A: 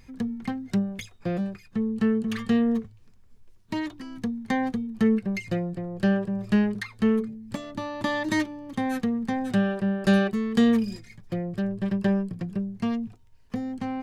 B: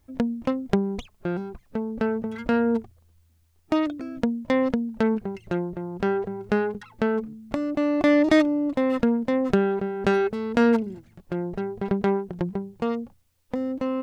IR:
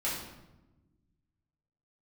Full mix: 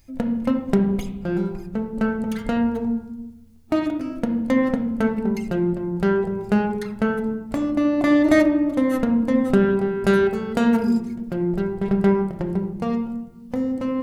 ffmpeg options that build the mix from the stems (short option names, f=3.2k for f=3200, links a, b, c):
-filter_complex "[0:a]crystalizer=i=5:c=0,volume=-13dB[a];[1:a]acrossover=split=3200[b][c];[c]acompressor=threshold=-54dB:ratio=4:attack=1:release=60[d];[b][d]amix=inputs=2:normalize=0,volume=-3dB,asplit=2[e][f];[f]volume=-5.5dB[g];[2:a]atrim=start_sample=2205[h];[g][h]afir=irnorm=-1:irlink=0[i];[a][e][i]amix=inputs=3:normalize=0,lowshelf=f=230:g=4.5"